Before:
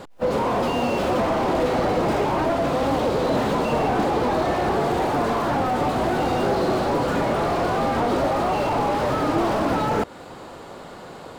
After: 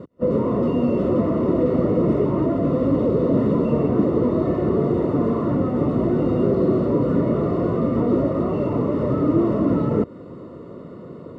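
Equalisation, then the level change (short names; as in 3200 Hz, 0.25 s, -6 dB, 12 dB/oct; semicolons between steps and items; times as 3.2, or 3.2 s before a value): running mean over 55 samples; HPF 98 Hz 12 dB/oct; +8.0 dB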